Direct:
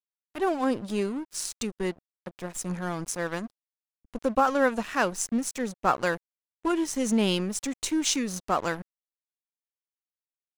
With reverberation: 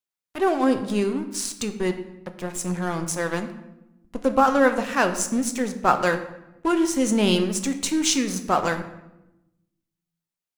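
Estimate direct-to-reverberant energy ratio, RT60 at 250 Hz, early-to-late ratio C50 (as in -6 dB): 7.0 dB, 1.4 s, 11.0 dB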